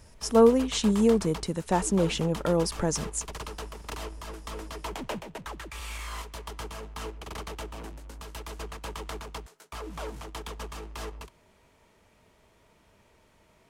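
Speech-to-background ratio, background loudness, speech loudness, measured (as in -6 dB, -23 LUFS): 14.5 dB, -39.5 LUFS, -25.0 LUFS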